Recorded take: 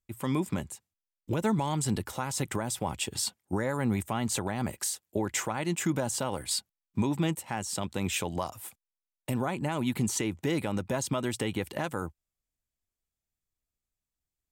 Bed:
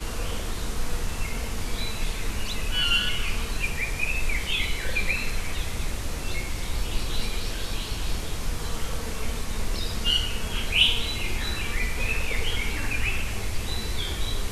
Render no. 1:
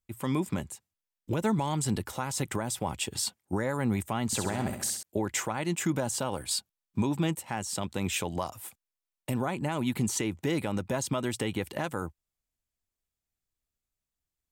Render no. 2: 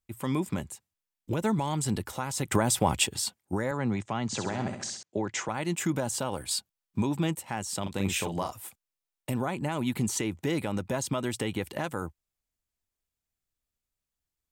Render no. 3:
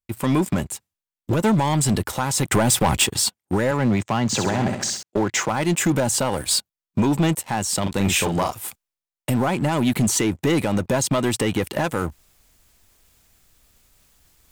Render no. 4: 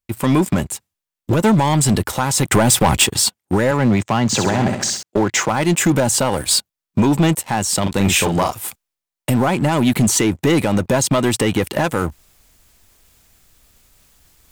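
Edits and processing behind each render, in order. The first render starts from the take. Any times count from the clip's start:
4.26–5.03 flutter echo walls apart 11.4 m, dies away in 0.62 s; 6.2–7.24 notch 2000 Hz, Q 11
2.52–3.07 gain +7.5 dB; 3.71–5.49 elliptic band-pass 110–6500 Hz; 7.82–8.52 doubler 41 ms -5.5 dB
sample leveller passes 3; reverse; upward compressor, threshold -30 dBFS; reverse
gain +4.5 dB

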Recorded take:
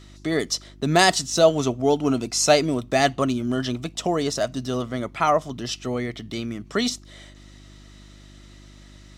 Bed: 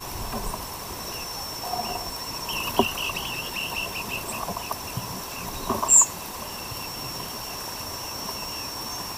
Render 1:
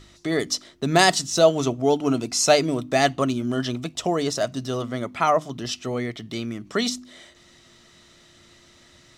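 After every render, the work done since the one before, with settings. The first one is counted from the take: de-hum 50 Hz, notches 6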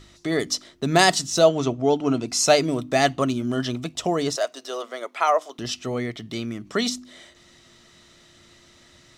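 1.48–2.28 air absorption 64 m; 4.36–5.59 HPF 420 Hz 24 dB/oct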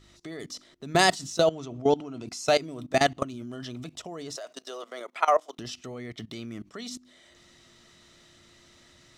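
level quantiser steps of 19 dB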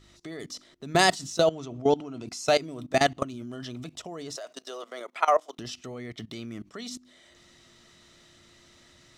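nothing audible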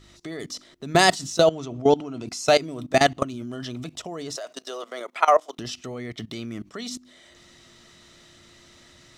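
gain +4.5 dB; limiter -3 dBFS, peak gain reduction 2 dB

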